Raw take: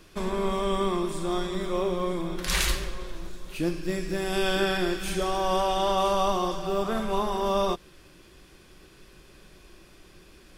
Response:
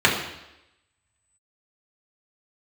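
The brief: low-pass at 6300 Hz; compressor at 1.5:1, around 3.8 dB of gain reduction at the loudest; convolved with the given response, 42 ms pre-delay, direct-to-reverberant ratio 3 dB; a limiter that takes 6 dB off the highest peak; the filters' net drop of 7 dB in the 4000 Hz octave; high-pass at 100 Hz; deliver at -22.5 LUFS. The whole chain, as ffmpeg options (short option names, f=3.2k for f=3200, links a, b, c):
-filter_complex "[0:a]highpass=100,lowpass=6.3k,equalizer=f=4k:t=o:g=-8.5,acompressor=threshold=-31dB:ratio=1.5,alimiter=limit=-22.5dB:level=0:latency=1,asplit=2[a][b];[1:a]atrim=start_sample=2205,adelay=42[c];[b][c]afir=irnorm=-1:irlink=0,volume=-24dB[d];[a][d]amix=inputs=2:normalize=0,volume=8.5dB"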